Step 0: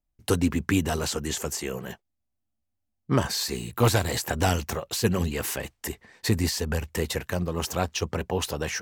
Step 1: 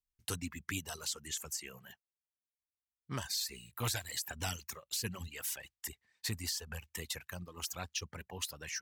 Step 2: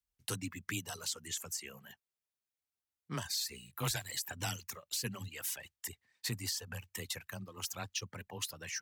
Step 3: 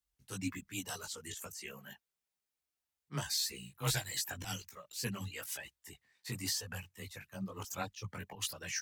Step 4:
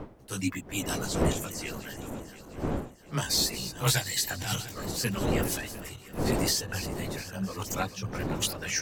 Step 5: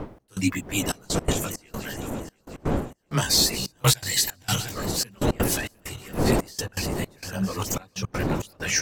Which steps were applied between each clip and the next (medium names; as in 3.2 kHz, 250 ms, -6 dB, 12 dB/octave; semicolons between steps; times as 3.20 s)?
reverb removal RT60 1.7 s; amplifier tone stack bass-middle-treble 5-5-5
frequency shift +15 Hz
slow attack 107 ms; chorus voices 6, 1.1 Hz, delay 18 ms, depth 3.6 ms; trim +5 dB
backward echo that repeats 351 ms, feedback 59%, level -12 dB; wind noise 410 Hz -43 dBFS; trim +8 dB
trance gate "xx..xxxxxx..x.x" 164 bpm -24 dB; trim +6.5 dB